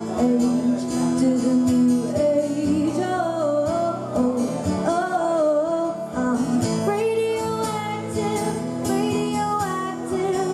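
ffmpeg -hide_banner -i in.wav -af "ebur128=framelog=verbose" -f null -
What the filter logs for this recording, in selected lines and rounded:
Integrated loudness:
  I:         -22.1 LUFS
  Threshold: -32.1 LUFS
Loudness range:
  LRA:         3.0 LU
  Threshold: -42.2 LUFS
  LRA low:   -23.7 LUFS
  LRA high:  -20.7 LUFS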